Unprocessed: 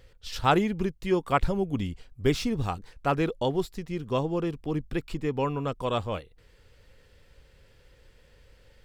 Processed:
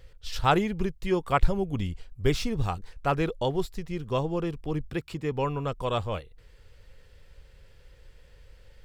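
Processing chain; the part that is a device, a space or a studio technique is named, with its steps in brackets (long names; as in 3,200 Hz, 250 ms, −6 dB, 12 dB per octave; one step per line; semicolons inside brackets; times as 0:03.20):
low shelf boost with a cut just above (low-shelf EQ 68 Hz +7.5 dB; parametric band 260 Hz −4.5 dB 0.69 octaves)
0:04.90–0:05.32: high-pass filter 77 Hz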